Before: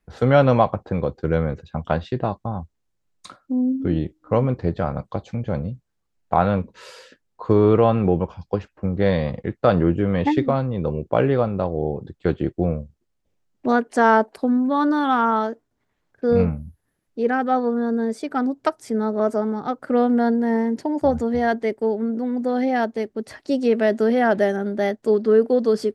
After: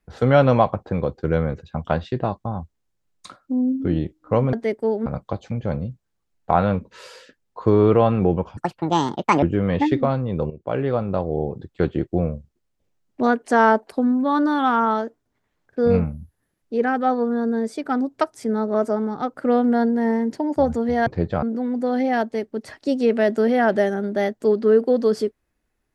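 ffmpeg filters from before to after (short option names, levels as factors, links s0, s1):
-filter_complex "[0:a]asplit=8[s0][s1][s2][s3][s4][s5][s6][s7];[s0]atrim=end=4.532[s8];[s1]atrim=start=21.518:end=22.052[s9];[s2]atrim=start=4.888:end=8.404[s10];[s3]atrim=start=8.4:end=9.88,asetpts=PTS-STARTPTS,asetrate=76293,aresample=44100,atrim=end_sample=37727,asetpts=PTS-STARTPTS[s11];[s4]atrim=start=9.876:end=10.96,asetpts=PTS-STARTPTS,afade=t=out:st=1.08:d=0.004:c=hsin:silence=0.211349[s12];[s5]atrim=start=10.96:end=21.522,asetpts=PTS-STARTPTS,afade=t=in:d=0.62:silence=0.211349[s13];[s6]atrim=start=4.528:end=4.892[s14];[s7]atrim=start=22.048[s15];[s8][s9]acrossfade=d=0.004:c1=hsin:c2=hsin[s16];[s16][s10]acrossfade=d=0.004:c1=hsin:c2=hsin[s17];[s17][s11]acrossfade=d=0.004:c1=hsin:c2=hsin[s18];[s12][s13]concat=n=2:v=0:a=1[s19];[s18][s19]acrossfade=d=0.004:c1=hsin:c2=hsin[s20];[s20][s14]acrossfade=d=0.004:c1=hsin:c2=hsin[s21];[s21][s15]acrossfade=d=0.004:c1=hsin:c2=hsin"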